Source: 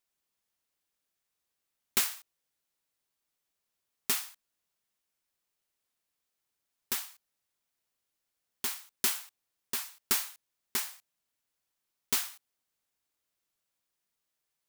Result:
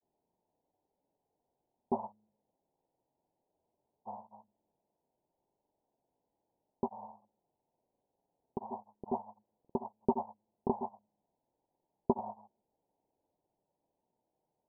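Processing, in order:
Butterworth low-pass 940 Hz 96 dB per octave
low-shelf EQ 89 Hz −11.5 dB
hum removal 106 Hz, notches 2
granular cloud 100 ms, grains 20 per second, spray 100 ms, pitch spread up and down by 0 semitones
level +15.5 dB

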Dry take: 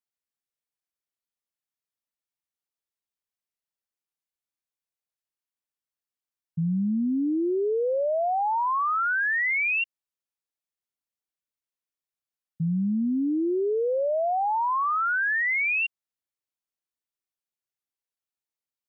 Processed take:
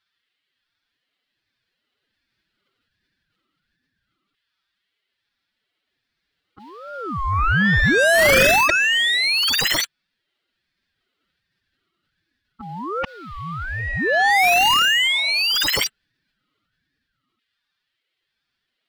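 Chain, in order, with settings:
drawn EQ curve 110 Hz 0 dB, 190 Hz −5 dB, 340 Hz 0 dB, 530 Hz −8 dB, 800 Hz +6 dB, 1,600 Hz −23 dB, 2,500 Hz +2 dB, 4,000 Hz 0 dB, 5,800 Hz −15 dB
auto-filter high-pass saw down 0.23 Hz 520–1,800 Hz
mid-hump overdrive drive 36 dB, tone 1,500 Hz, clips at −8 dBFS
phase-vocoder pitch shift with formants kept +11 semitones
ring modulator whose carrier an LFO sweeps 740 Hz, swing 35%, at 1.3 Hz
level +2.5 dB

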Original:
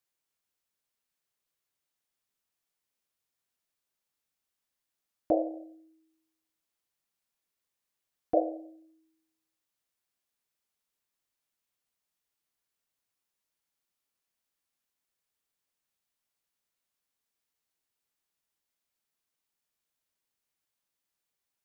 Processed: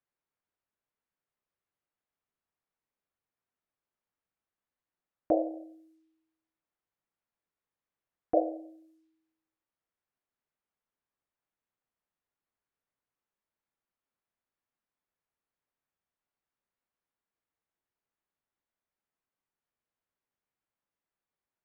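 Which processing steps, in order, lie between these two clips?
low-pass that shuts in the quiet parts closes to 1,700 Hz, open at −46.5 dBFS

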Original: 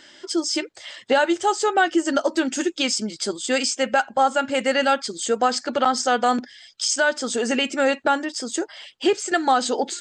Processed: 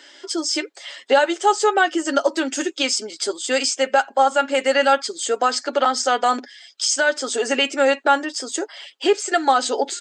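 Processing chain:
high-pass filter 300 Hz 24 dB per octave
comb filter 7.2 ms, depth 40%
level +1.5 dB

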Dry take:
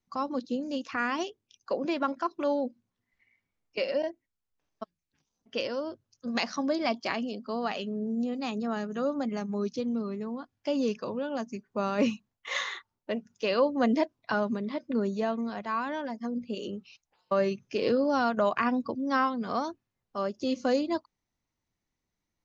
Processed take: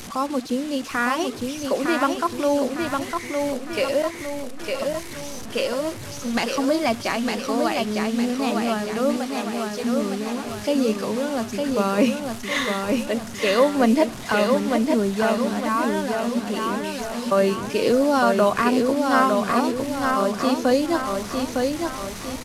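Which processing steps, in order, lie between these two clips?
linear delta modulator 64 kbit/s, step −37.5 dBFS
0:09.16–0:09.84: high-pass filter 610 Hz
repeating echo 907 ms, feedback 48%, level −4 dB
level +7 dB

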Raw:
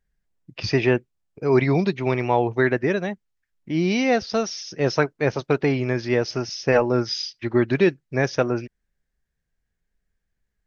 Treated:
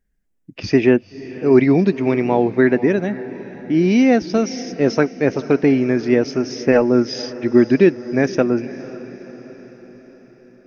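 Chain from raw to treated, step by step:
graphic EQ with 10 bands 125 Hz −6 dB, 250 Hz +8 dB, 1,000 Hz −5 dB, 4,000 Hz −7 dB
feedback delay with all-pass diffusion 509 ms, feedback 54%, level −16 dB
level +3.5 dB

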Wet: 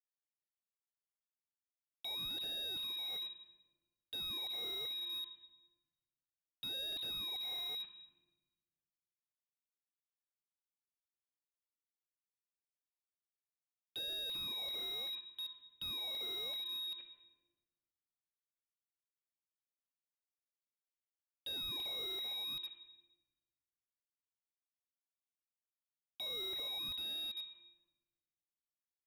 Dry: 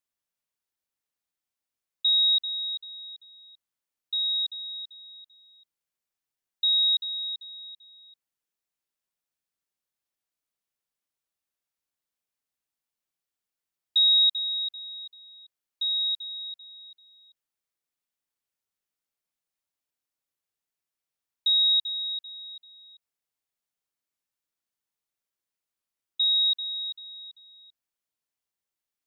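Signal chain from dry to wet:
shaped tremolo saw down 1.3 Hz, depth 35%
noise gate with hold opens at −47 dBFS
reversed playback
downward compressor 6 to 1, threshold −37 dBFS, peak gain reduction 16.5 dB
reversed playback
centre clipping without the shift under −54.5 dBFS
pitch vibrato 0.69 Hz 13 cents
Butterworth low-pass 3,600 Hz 72 dB per octave
on a send at −4 dB: convolution reverb RT60 1.2 s, pre-delay 4 ms
on the sum: slew-rate limiting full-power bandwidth 6.4 Hz
level +14.5 dB

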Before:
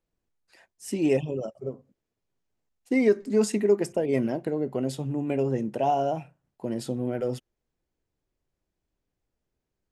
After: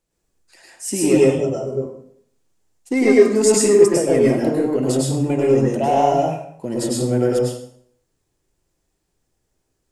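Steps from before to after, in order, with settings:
in parallel at −3.5 dB: soft clipping −20 dBFS, distortion −12 dB
on the sum: parametric band 8,000 Hz +9.5 dB 1.2 octaves
dense smooth reverb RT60 0.64 s, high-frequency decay 0.8×, pre-delay 90 ms, DRR −4.5 dB

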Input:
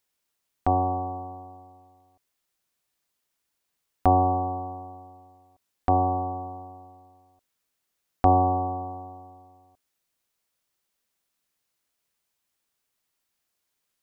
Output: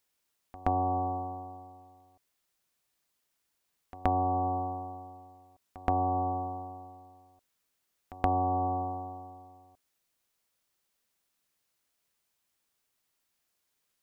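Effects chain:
downward compressor 6 to 1, threshold −25 dBFS, peak gain reduction 11 dB
backwards echo 124 ms −20 dB

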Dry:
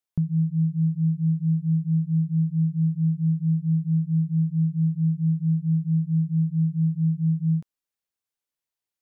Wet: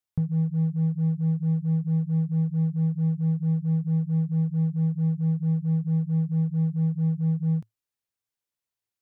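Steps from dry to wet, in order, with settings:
parametric band 110 Hz +9.5 dB 0.35 octaves
in parallel at −6.5 dB: hard clipping −25 dBFS, distortion −9 dB
on the sum: level −4.5 dB

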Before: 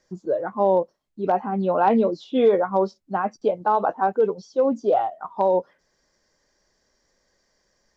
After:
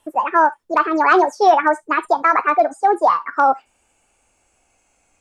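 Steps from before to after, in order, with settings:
gliding playback speed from 171% → 135%
on a send: high-pass filter 1,000 Hz 24 dB per octave + convolution reverb, pre-delay 3 ms, DRR 14 dB
on the sum: level +5.5 dB

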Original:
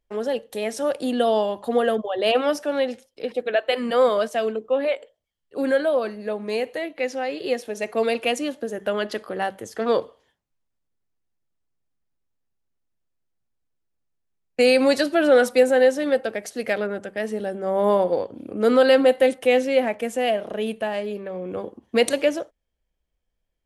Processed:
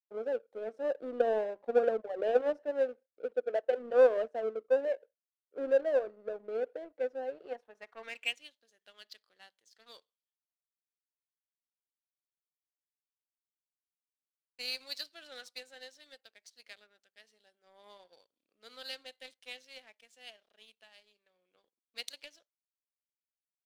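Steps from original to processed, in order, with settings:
band-pass filter sweep 500 Hz → 4,400 Hz, 0:07.22–0:08.62
power curve on the samples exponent 1.4
level −2.5 dB

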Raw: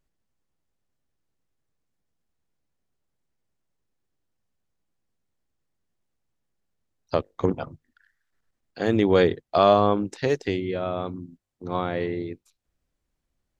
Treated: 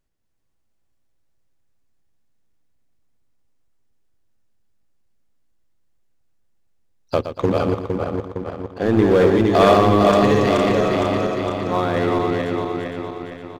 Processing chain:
feedback delay that plays each chunk backwards 230 ms, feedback 73%, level −3 dB
0:07.68–0:09.35: high-shelf EQ 2,600 Hz −11.5 dB
leveller curve on the samples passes 1
in parallel at −8 dB: wave folding −18.5 dBFS
on the sum: repeating echo 118 ms, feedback 42%, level −10 dB
on a send at −21 dB: convolution reverb, pre-delay 3 ms

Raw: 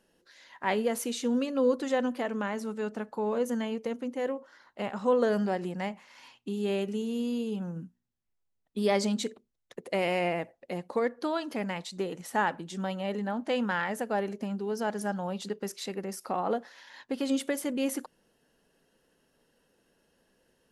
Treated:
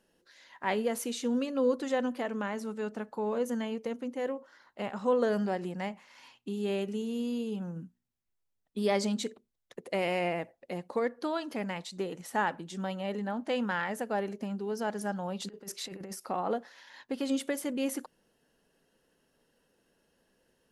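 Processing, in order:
0:15.40–0:16.14: compressor whose output falls as the input rises −38 dBFS, ratio −0.5
level −2 dB

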